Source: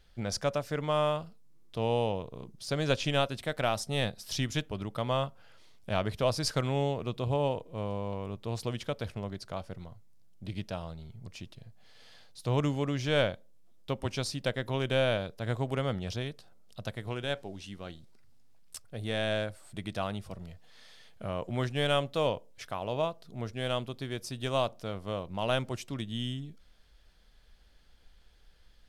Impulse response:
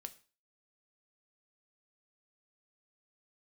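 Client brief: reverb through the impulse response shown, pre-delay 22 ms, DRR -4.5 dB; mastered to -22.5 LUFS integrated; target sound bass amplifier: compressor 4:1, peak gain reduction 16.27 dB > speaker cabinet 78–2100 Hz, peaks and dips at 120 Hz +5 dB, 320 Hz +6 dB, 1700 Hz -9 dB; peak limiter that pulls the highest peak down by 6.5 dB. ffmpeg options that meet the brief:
-filter_complex "[0:a]alimiter=limit=-21dB:level=0:latency=1,asplit=2[a][b];[1:a]atrim=start_sample=2205,adelay=22[c];[b][c]afir=irnorm=-1:irlink=0,volume=9dB[d];[a][d]amix=inputs=2:normalize=0,acompressor=threshold=-38dB:ratio=4,highpass=f=78:w=0.5412,highpass=f=78:w=1.3066,equalizer=f=120:t=q:w=4:g=5,equalizer=f=320:t=q:w=4:g=6,equalizer=f=1.7k:t=q:w=4:g=-9,lowpass=f=2.1k:w=0.5412,lowpass=f=2.1k:w=1.3066,volume=17.5dB"

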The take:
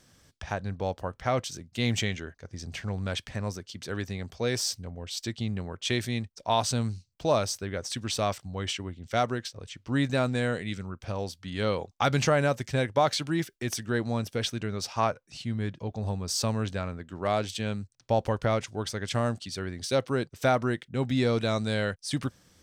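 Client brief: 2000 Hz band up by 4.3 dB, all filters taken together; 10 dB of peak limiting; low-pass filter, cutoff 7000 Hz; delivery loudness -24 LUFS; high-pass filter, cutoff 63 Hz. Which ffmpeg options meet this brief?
-af "highpass=63,lowpass=7k,equalizer=f=2k:t=o:g=5.5,volume=8dB,alimiter=limit=-10dB:level=0:latency=1"

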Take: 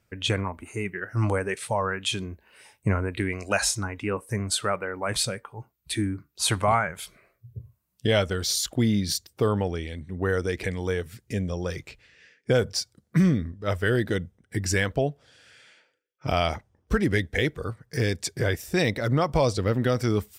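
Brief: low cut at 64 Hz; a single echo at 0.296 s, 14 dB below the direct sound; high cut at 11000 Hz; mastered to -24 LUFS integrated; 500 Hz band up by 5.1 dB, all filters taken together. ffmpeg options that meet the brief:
-af "highpass=64,lowpass=11k,equalizer=f=500:t=o:g=6,aecho=1:1:296:0.2,volume=0.5dB"

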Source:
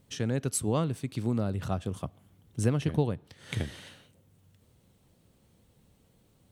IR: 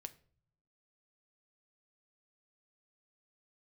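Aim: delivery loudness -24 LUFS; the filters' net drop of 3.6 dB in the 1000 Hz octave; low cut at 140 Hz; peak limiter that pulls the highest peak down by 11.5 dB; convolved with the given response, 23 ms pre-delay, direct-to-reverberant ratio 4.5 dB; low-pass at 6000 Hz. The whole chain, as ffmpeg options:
-filter_complex "[0:a]highpass=140,lowpass=6k,equalizer=f=1k:t=o:g=-5,alimiter=level_in=3dB:limit=-24dB:level=0:latency=1,volume=-3dB,asplit=2[a][b];[1:a]atrim=start_sample=2205,adelay=23[c];[b][c]afir=irnorm=-1:irlink=0,volume=0.5dB[d];[a][d]amix=inputs=2:normalize=0,volume=14dB"

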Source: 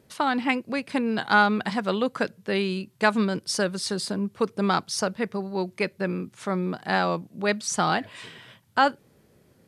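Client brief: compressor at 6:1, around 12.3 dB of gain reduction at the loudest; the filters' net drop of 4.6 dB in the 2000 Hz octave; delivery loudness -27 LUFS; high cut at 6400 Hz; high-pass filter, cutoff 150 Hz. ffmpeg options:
-af "highpass=150,lowpass=6.4k,equalizer=f=2k:t=o:g=-7,acompressor=threshold=-29dB:ratio=6,volume=7.5dB"

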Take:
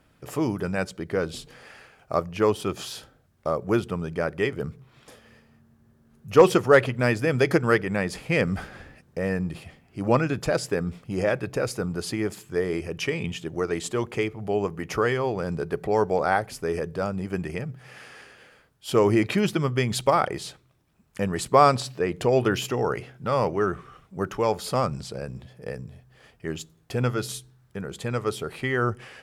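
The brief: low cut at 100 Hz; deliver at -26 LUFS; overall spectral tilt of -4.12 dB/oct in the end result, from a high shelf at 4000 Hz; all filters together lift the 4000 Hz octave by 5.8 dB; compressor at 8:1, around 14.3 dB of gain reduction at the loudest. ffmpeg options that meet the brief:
-af "highpass=100,highshelf=f=4k:g=6.5,equalizer=f=4k:t=o:g=3.5,acompressor=threshold=-24dB:ratio=8,volume=4.5dB"

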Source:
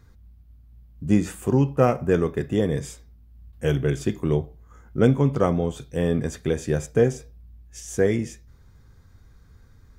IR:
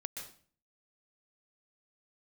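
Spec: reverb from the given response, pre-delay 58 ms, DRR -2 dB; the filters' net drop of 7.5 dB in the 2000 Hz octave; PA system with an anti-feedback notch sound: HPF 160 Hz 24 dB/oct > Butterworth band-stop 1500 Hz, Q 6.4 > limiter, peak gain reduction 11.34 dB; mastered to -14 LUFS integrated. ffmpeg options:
-filter_complex "[0:a]equalizer=f=2k:t=o:g=-6.5,asplit=2[a][b];[1:a]atrim=start_sample=2205,adelay=58[c];[b][c]afir=irnorm=-1:irlink=0,volume=3.5dB[d];[a][d]amix=inputs=2:normalize=0,highpass=f=160:w=0.5412,highpass=f=160:w=1.3066,asuperstop=centerf=1500:order=8:qfactor=6.4,volume=12dB,alimiter=limit=-4dB:level=0:latency=1"

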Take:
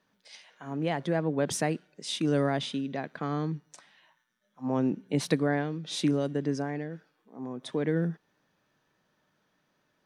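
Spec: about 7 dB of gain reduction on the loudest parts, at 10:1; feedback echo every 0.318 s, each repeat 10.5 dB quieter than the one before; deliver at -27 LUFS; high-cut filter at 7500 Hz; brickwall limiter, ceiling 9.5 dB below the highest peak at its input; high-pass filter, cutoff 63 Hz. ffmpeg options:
-af "highpass=63,lowpass=7.5k,acompressor=threshold=-28dB:ratio=10,alimiter=level_in=2.5dB:limit=-24dB:level=0:latency=1,volume=-2.5dB,aecho=1:1:318|636|954:0.299|0.0896|0.0269,volume=10dB"

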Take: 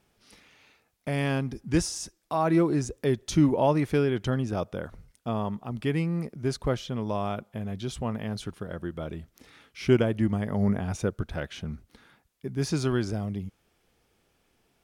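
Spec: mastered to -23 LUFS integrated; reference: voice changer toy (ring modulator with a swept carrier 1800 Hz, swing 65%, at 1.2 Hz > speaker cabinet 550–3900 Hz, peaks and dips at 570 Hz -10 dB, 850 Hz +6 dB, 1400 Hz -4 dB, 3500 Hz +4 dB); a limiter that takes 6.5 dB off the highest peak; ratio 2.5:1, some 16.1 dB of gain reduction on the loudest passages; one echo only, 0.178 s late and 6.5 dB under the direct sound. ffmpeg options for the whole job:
-af "acompressor=threshold=-41dB:ratio=2.5,alimiter=level_in=8dB:limit=-24dB:level=0:latency=1,volume=-8dB,aecho=1:1:178:0.473,aeval=exprs='val(0)*sin(2*PI*1800*n/s+1800*0.65/1.2*sin(2*PI*1.2*n/s))':c=same,highpass=550,equalizer=f=570:t=q:w=4:g=-10,equalizer=f=850:t=q:w=4:g=6,equalizer=f=1.4k:t=q:w=4:g=-4,equalizer=f=3.5k:t=q:w=4:g=4,lowpass=f=3.9k:w=0.5412,lowpass=f=3.9k:w=1.3066,volume=19dB"

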